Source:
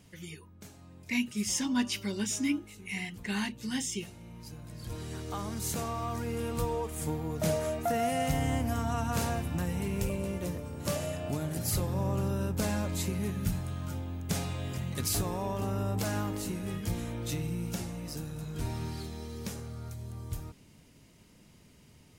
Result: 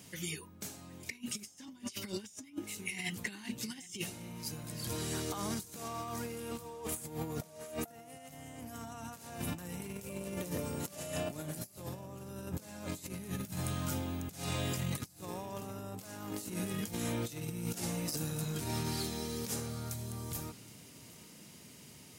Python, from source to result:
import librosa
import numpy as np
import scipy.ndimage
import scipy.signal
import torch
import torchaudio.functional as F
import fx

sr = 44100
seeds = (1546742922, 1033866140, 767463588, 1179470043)

y = scipy.signal.sosfilt(scipy.signal.butter(2, 130.0, 'highpass', fs=sr, output='sos'), x)
y = fx.high_shelf(y, sr, hz=4300.0, db=9.0)
y = fx.over_compress(y, sr, threshold_db=-38.0, ratio=-0.5)
y = fx.echo_feedback(y, sr, ms=770, feedback_pct=35, wet_db=-21.0)
y = F.gain(torch.from_numpy(y), -1.5).numpy()